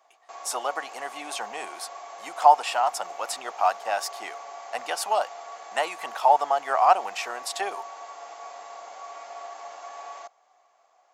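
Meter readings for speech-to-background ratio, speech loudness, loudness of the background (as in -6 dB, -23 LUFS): 15.5 dB, -25.5 LUFS, -41.0 LUFS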